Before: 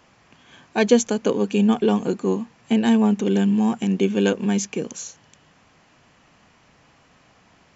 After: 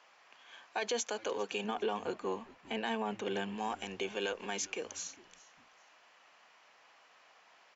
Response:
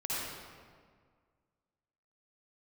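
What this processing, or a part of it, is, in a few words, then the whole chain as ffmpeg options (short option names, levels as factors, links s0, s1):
DJ mixer with the lows and highs turned down: -filter_complex "[0:a]acrossover=split=510 6700:gain=0.0631 1 0.2[s0][s1][s2];[s0][s1][s2]amix=inputs=3:normalize=0,alimiter=limit=0.0891:level=0:latency=1:release=39,asettb=1/sr,asplit=3[s3][s4][s5];[s3]atrim=end=1.644[s6];[s4]atrim=start=1.64:end=3.58,asetpts=PTS-STARTPTS,afade=t=in:d=0.004:c=qsin,afade=t=out:st=1.936:d=0.004:c=qsin,bass=f=250:g=6,treble=f=4000:g=-6[s7];[s5]atrim=start=3.576[s8];[s6][s7]acrossfade=d=0.004:c1=hsin:c2=qsin[s9];[s9][s8]acrossfade=d=0.004:c1=qsin:c2=hsin,highpass=170,asplit=3[s10][s11][s12];[s11]adelay=404,afreqshift=-110,volume=0.0891[s13];[s12]adelay=808,afreqshift=-220,volume=0.0275[s14];[s10][s13][s14]amix=inputs=3:normalize=0,volume=0.631"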